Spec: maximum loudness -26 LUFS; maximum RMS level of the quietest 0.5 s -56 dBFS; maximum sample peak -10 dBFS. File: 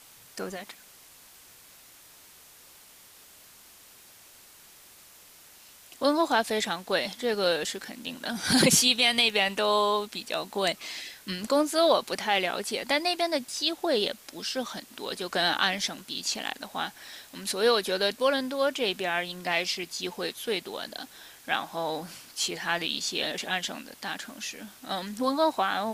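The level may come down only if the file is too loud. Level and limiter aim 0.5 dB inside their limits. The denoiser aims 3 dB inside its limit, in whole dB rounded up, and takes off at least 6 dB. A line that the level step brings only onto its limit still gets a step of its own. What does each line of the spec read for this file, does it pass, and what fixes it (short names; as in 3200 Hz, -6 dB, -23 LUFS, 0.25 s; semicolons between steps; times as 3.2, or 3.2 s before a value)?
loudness -27.5 LUFS: OK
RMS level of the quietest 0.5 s -53 dBFS: fail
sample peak -7.5 dBFS: fail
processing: denoiser 6 dB, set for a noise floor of -53 dBFS; limiter -10.5 dBFS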